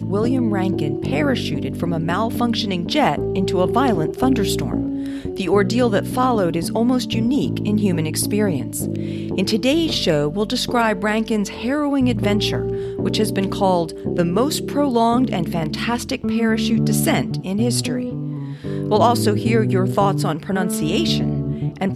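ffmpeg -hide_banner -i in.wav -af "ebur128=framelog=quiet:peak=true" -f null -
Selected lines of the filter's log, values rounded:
Integrated loudness:
  I:         -19.6 LUFS
  Threshold: -29.6 LUFS
Loudness range:
  LRA:         1.2 LU
  Threshold: -39.5 LUFS
  LRA low:   -20.1 LUFS
  LRA high:  -18.9 LUFS
True peak:
  Peak:       -2.1 dBFS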